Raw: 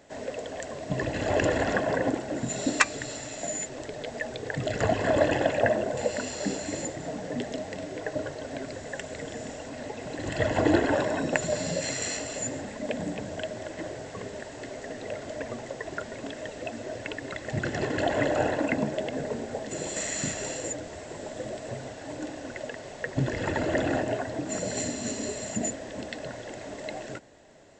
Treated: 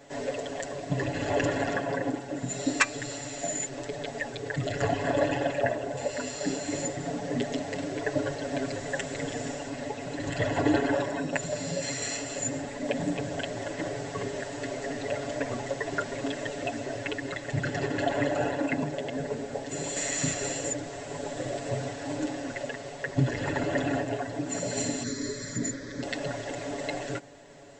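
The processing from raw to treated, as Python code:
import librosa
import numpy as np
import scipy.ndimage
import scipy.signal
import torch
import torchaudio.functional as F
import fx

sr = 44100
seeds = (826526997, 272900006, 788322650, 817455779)

y = fx.fixed_phaser(x, sr, hz=2800.0, stages=6, at=(25.03, 26.03))
y = y + 0.99 * np.pad(y, (int(7.1 * sr / 1000.0), 0))[:len(y)]
y = fx.rider(y, sr, range_db=5, speed_s=2.0)
y = y * 10.0 ** (-3.5 / 20.0)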